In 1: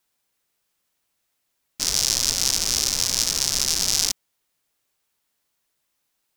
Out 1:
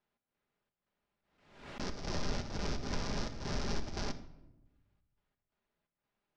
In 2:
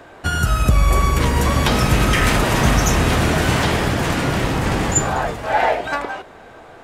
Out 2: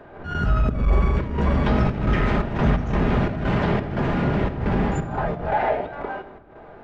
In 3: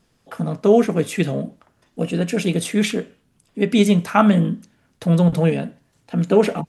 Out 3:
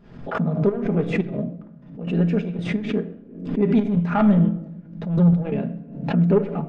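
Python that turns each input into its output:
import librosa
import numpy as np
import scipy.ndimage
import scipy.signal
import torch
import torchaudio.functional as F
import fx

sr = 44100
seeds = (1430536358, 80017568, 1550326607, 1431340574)

y = 10.0 ** (-12.0 / 20.0) * np.tanh(x / 10.0 ** (-12.0 / 20.0))
y = fx.spacing_loss(y, sr, db_at_10k=40)
y = fx.notch(y, sr, hz=1100.0, q=20.0)
y = fx.step_gate(y, sr, bpm=87, pattern='x.xx.xx.xxx.xx.', floor_db=-12.0, edge_ms=4.5)
y = fx.room_shoebox(y, sr, seeds[0], volume_m3=3400.0, walls='furnished', distance_m=1.3)
y = fx.pre_swell(y, sr, db_per_s=81.0)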